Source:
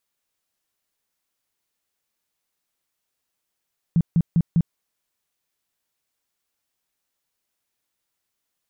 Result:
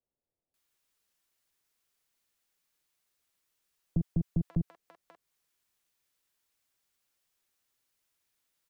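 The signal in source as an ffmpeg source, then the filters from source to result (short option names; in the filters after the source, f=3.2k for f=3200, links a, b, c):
-f lavfi -i "aevalsrc='0.211*sin(2*PI*167*mod(t,0.2))*lt(mod(t,0.2),8/167)':d=0.8:s=44100"
-filter_complex "[0:a]acrossover=split=150|270[a][b][c];[b]aeval=exprs='max(val(0),0)':c=same[d];[a][d][c]amix=inputs=3:normalize=0,acompressor=threshold=-26dB:ratio=4,acrossover=split=710[e][f];[f]adelay=540[g];[e][g]amix=inputs=2:normalize=0"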